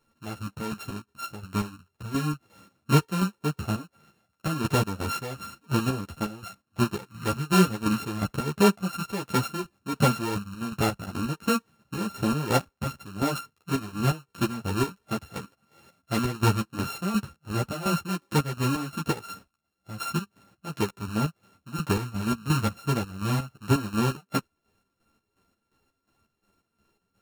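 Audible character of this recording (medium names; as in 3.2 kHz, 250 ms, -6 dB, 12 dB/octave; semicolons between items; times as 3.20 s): a buzz of ramps at a fixed pitch in blocks of 32 samples; chopped level 2.8 Hz, depth 65%, duty 50%; a shimmering, thickened sound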